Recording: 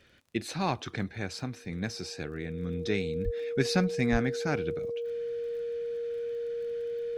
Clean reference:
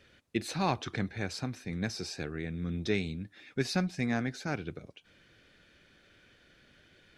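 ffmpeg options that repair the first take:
-filter_complex "[0:a]adeclick=t=4,bandreject=f=470:w=30,asplit=3[a][b][c];[a]afade=t=out:st=3.24:d=0.02[d];[b]highpass=f=140:w=0.5412,highpass=f=140:w=1.3066,afade=t=in:st=3.24:d=0.02,afade=t=out:st=3.36:d=0.02[e];[c]afade=t=in:st=3.36:d=0.02[f];[d][e][f]amix=inputs=3:normalize=0,asplit=3[g][h][i];[g]afade=t=out:st=4.11:d=0.02[j];[h]highpass=f=140:w=0.5412,highpass=f=140:w=1.3066,afade=t=in:st=4.11:d=0.02,afade=t=out:st=4.23:d=0.02[k];[i]afade=t=in:st=4.23:d=0.02[l];[j][k][l]amix=inputs=3:normalize=0,asetnsamples=n=441:p=0,asendcmd='3.16 volume volume -3.5dB',volume=0dB"

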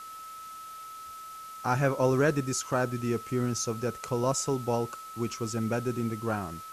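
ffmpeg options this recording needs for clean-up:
-af "bandreject=f=1.3k:w=30,afftdn=nr=30:nf=-44"

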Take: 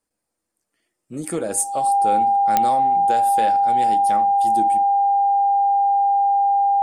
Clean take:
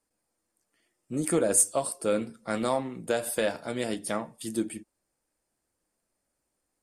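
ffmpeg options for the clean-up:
-af "adeclick=t=4,bandreject=f=800:w=30"

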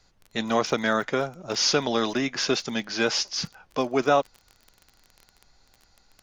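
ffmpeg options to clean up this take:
-af "adeclick=t=4,agate=range=-21dB:threshold=-54dB"

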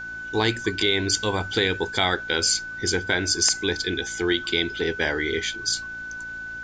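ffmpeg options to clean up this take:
-af "bandreject=f=56.8:t=h:w=4,bandreject=f=113.6:t=h:w=4,bandreject=f=170.4:t=h:w=4,bandreject=f=227.2:t=h:w=4,bandreject=f=284:t=h:w=4,bandreject=f=340.8:t=h:w=4,bandreject=f=1.5k:w=30,agate=range=-21dB:threshold=-27dB"

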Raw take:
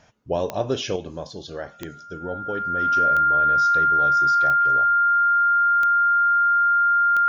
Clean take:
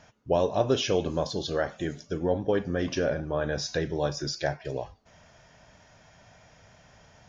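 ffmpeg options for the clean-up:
-af "adeclick=t=4,bandreject=f=1.4k:w=30,asetnsamples=n=441:p=0,asendcmd='0.96 volume volume 5dB',volume=0dB"

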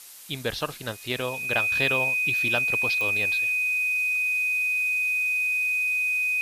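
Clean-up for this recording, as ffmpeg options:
-af "adeclick=t=4,bandreject=f=2.5k:w=30,afftdn=nr=30:nf=-37"

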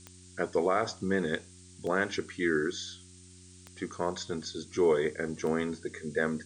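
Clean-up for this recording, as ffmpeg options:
-af "adeclick=t=4,bandreject=f=90.9:t=h:w=4,bandreject=f=181.8:t=h:w=4,bandreject=f=272.7:t=h:w=4,bandreject=f=363.6:t=h:w=4,afftdn=nr=23:nf=-53"

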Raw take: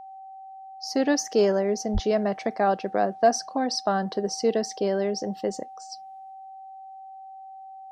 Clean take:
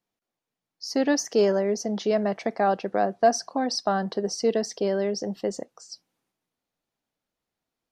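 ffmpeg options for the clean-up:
-filter_complex "[0:a]bandreject=f=770:w=30,asplit=3[a][b][c];[a]afade=t=out:st=1.93:d=0.02[d];[b]highpass=f=140:w=0.5412,highpass=f=140:w=1.3066,afade=t=in:st=1.93:d=0.02,afade=t=out:st=2.05:d=0.02[e];[c]afade=t=in:st=2.05:d=0.02[f];[d][e][f]amix=inputs=3:normalize=0"

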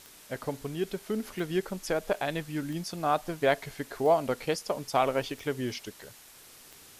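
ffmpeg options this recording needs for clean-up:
-af "adeclick=t=4,afwtdn=0.0028"

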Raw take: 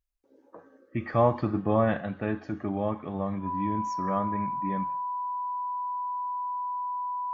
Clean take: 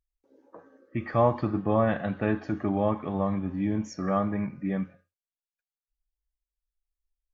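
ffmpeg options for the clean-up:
-af "bandreject=f=990:w=30,asetnsamples=n=441:p=0,asendcmd='2 volume volume 3.5dB',volume=0dB"

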